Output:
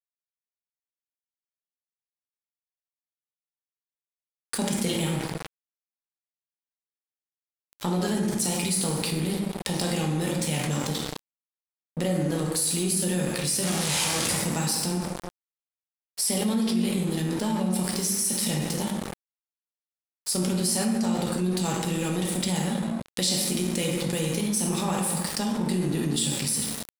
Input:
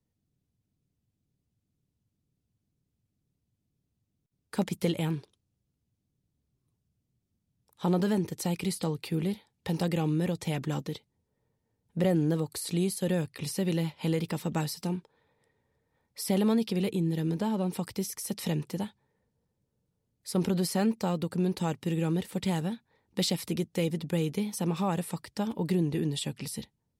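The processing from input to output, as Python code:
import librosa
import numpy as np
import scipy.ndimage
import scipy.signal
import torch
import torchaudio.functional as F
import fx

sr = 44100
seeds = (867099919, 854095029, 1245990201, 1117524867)

y = fx.clip_1bit(x, sr, at=(13.63, 14.34))
y = scipy.signal.sosfilt(scipy.signal.butter(4, 51.0, 'highpass', fs=sr, output='sos'), y)
y = librosa.effects.preemphasis(y, coef=0.8, zi=[0.0])
y = fx.rev_plate(y, sr, seeds[0], rt60_s=1.2, hf_ratio=0.6, predelay_ms=0, drr_db=-2.0)
y = fx.dynamic_eq(y, sr, hz=230.0, q=6.0, threshold_db=-56.0, ratio=4.0, max_db=8)
y = scipy.signal.sosfilt(scipy.signal.butter(8, 11000.0, 'lowpass', fs=sr, output='sos'), y)
y = np.sign(y) * np.maximum(np.abs(y) - 10.0 ** (-50.0 / 20.0), 0.0)
y = fx.env_flatten(y, sr, amount_pct=70)
y = y * 10.0 ** (4.5 / 20.0)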